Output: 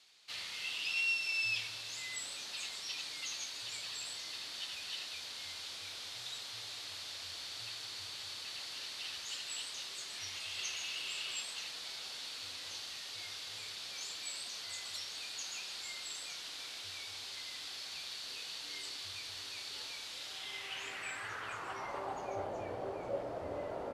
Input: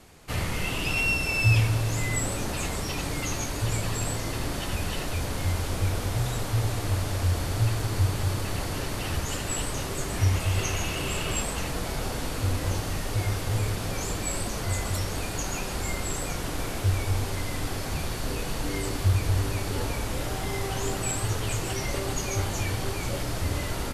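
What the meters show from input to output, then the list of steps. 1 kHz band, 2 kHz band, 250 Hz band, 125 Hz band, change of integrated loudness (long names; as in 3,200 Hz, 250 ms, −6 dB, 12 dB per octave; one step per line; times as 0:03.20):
−13.0 dB, −8.5 dB, −23.0 dB, −34.0 dB, −11.5 dB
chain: band-pass filter sweep 4,000 Hz → 590 Hz, 0:20.27–0:22.51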